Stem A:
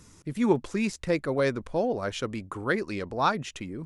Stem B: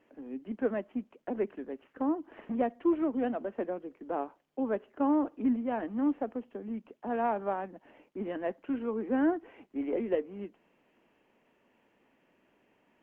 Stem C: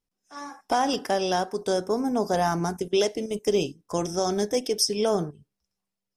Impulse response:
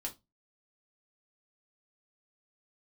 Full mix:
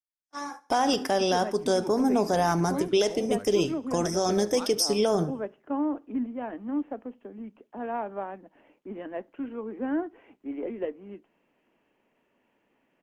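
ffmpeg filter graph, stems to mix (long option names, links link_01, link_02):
-filter_complex "[0:a]adelay=1350,volume=-15dB,asplit=2[link_01][link_02];[link_02]volume=-17.5dB[link_03];[1:a]adelay=700,volume=-3dB,asplit=2[link_04][link_05];[link_05]volume=-14.5dB[link_06];[2:a]agate=range=-34dB:threshold=-44dB:ratio=16:detection=peak,volume=2.5dB,asplit=2[link_07][link_08];[link_08]volume=-22dB[link_09];[3:a]atrim=start_sample=2205[link_10];[link_06][link_10]afir=irnorm=-1:irlink=0[link_11];[link_03][link_09]amix=inputs=2:normalize=0,aecho=0:1:72|144|216|288|360|432:1|0.43|0.185|0.0795|0.0342|0.0147[link_12];[link_01][link_04][link_07][link_11][link_12]amix=inputs=5:normalize=0,alimiter=limit=-14dB:level=0:latency=1:release=65"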